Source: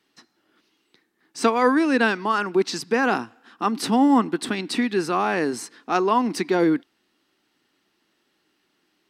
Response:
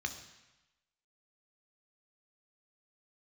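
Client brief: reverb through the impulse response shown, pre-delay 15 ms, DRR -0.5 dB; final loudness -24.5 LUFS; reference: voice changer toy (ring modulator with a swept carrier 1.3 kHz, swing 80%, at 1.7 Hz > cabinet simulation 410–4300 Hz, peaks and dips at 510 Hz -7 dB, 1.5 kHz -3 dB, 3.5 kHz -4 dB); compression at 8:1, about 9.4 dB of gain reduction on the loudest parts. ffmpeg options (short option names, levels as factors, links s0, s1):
-filter_complex "[0:a]acompressor=threshold=0.0708:ratio=8,asplit=2[s0][s1];[1:a]atrim=start_sample=2205,adelay=15[s2];[s1][s2]afir=irnorm=-1:irlink=0,volume=0.841[s3];[s0][s3]amix=inputs=2:normalize=0,aeval=exprs='val(0)*sin(2*PI*1300*n/s+1300*0.8/1.7*sin(2*PI*1.7*n/s))':c=same,highpass=410,equalizer=f=510:t=q:w=4:g=-7,equalizer=f=1500:t=q:w=4:g=-3,equalizer=f=3500:t=q:w=4:g=-4,lowpass=f=4300:w=0.5412,lowpass=f=4300:w=1.3066,volume=1.68"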